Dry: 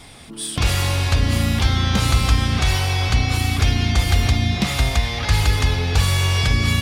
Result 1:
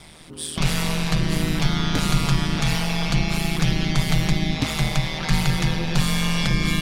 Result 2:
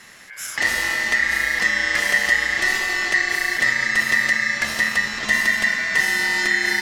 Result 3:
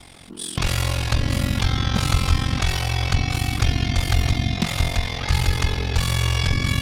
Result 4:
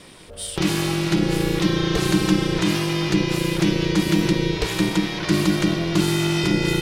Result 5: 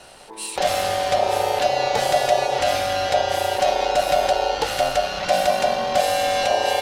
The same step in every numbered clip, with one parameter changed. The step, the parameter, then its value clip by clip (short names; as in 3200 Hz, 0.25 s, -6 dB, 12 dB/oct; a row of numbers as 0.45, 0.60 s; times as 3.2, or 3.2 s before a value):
ring modulator, frequency: 79, 1900, 22, 250, 660 Hz